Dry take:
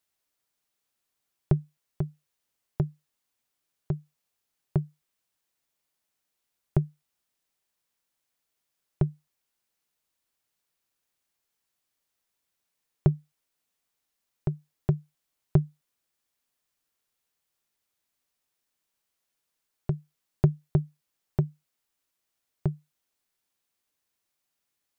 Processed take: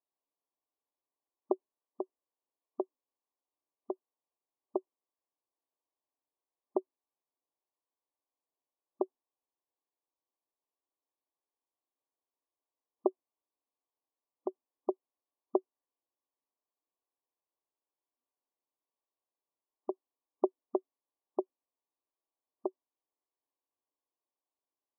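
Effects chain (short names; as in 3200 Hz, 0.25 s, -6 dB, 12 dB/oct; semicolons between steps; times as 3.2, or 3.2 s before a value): spectral noise reduction 8 dB; brick-wall FIR band-pass 240–1200 Hz; gain +3 dB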